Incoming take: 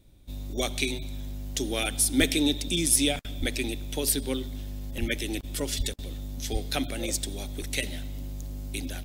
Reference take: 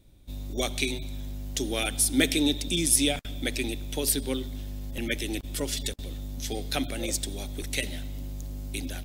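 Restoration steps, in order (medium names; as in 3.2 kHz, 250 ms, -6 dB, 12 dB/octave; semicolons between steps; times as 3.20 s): clip repair -11.5 dBFS; de-plosive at 2.19/3.39/4.99/5.77/6.52 s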